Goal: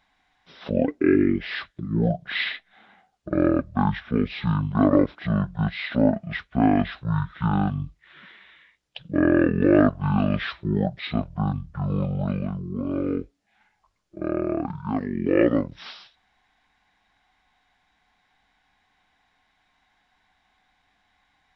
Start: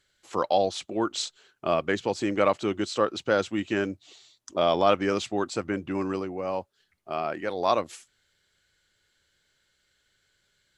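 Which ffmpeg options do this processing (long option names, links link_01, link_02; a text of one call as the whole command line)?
ffmpeg -i in.wav -af "asetrate=22050,aresample=44100,volume=3.5dB" out.wav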